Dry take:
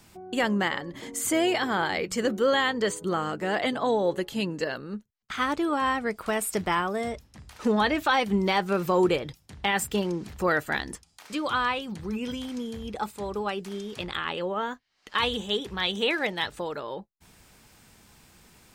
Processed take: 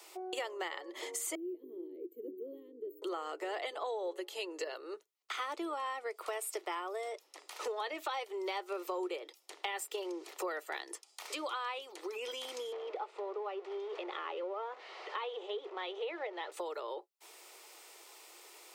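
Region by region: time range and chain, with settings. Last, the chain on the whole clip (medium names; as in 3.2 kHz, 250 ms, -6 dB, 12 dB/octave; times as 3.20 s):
1.35–3.02 s: inverse Chebyshev band-stop 710–9700 Hz, stop band 50 dB + peaking EQ 92 Hz +12 dB 2.2 oct
12.72–16.52 s: jump at every zero crossing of -34.5 dBFS + Chebyshev high-pass 420 Hz + tape spacing loss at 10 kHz 37 dB
whole clip: steep high-pass 340 Hz 72 dB/octave; band-stop 1.6 kHz, Q 5.3; compression 4:1, threshold -41 dBFS; trim +2.5 dB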